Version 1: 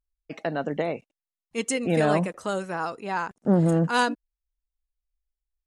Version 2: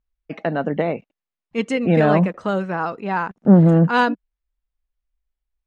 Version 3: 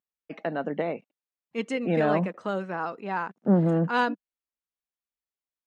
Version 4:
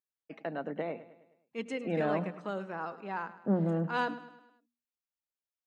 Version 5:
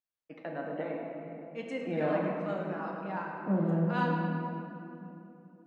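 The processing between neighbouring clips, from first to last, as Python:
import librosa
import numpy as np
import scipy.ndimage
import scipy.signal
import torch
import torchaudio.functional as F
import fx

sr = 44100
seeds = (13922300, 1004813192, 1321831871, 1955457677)

y1 = scipy.signal.sosfilt(scipy.signal.butter(2, 2900.0, 'lowpass', fs=sr, output='sos'), x)
y1 = fx.peak_eq(y1, sr, hz=190.0, db=5.0, octaves=0.56)
y1 = y1 * 10.0 ** (5.5 / 20.0)
y2 = scipy.signal.sosfilt(scipy.signal.butter(2, 190.0, 'highpass', fs=sr, output='sos'), y1)
y2 = y2 * 10.0 ** (-7.0 / 20.0)
y3 = fx.hum_notches(y2, sr, base_hz=60, count=4)
y3 = fx.echo_feedback(y3, sr, ms=104, feedback_pct=51, wet_db=-15.5)
y3 = y3 * 10.0 ** (-7.0 / 20.0)
y4 = fx.high_shelf(y3, sr, hz=5100.0, db=-7.0)
y4 = fx.notch(y4, sr, hz=410.0, q=12.0)
y4 = fx.room_shoebox(y4, sr, seeds[0], volume_m3=130.0, walls='hard', distance_m=0.45)
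y4 = y4 * 10.0 ** (-2.5 / 20.0)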